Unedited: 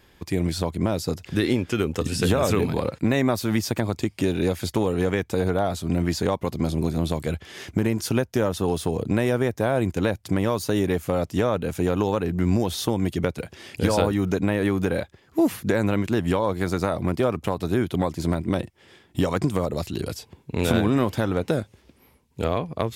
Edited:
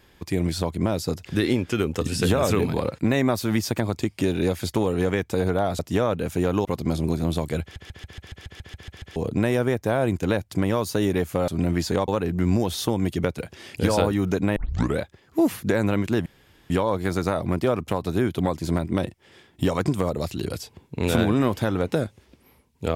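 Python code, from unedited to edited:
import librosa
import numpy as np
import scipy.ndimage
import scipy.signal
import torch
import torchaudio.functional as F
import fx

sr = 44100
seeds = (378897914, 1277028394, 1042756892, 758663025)

y = fx.edit(x, sr, fx.swap(start_s=5.79, length_s=0.6, other_s=11.22, other_length_s=0.86),
    fx.stutter_over(start_s=7.36, slice_s=0.14, count=11),
    fx.tape_start(start_s=14.56, length_s=0.43),
    fx.insert_room_tone(at_s=16.26, length_s=0.44), tone=tone)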